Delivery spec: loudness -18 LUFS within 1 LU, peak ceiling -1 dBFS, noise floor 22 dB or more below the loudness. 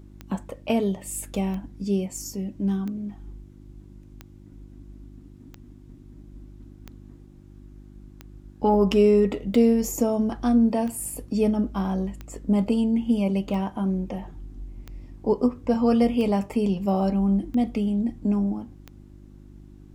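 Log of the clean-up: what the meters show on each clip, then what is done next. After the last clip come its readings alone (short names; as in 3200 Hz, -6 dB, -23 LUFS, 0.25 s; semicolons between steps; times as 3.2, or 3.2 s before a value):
clicks 15; hum 50 Hz; harmonics up to 350 Hz; hum level -46 dBFS; loudness -24.0 LUFS; peak -8.0 dBFS; loudness target -18.0 LUFS
-> de-click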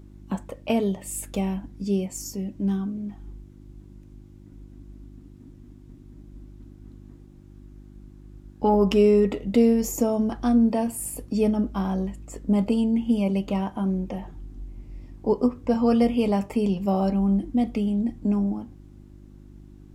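clicks 0; hum 50 Hz; harmonics up to 350 Hz; hum level -46 dBFS
-> de-hum 50 Hz, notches 7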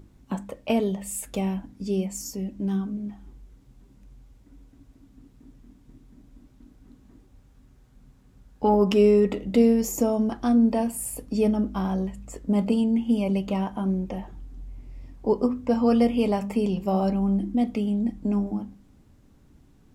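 hum none; loudness -24.5 LUFS; peak -8.5 dBFS; loudness target -18.0 LUFS
-> gain +6.5 dB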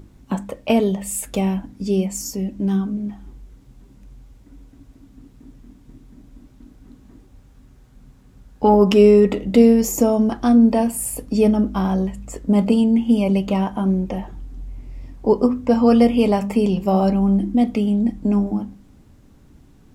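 loudness -18.0 LUFS; peak -2.0 dBFS; noise floor -50 dBFS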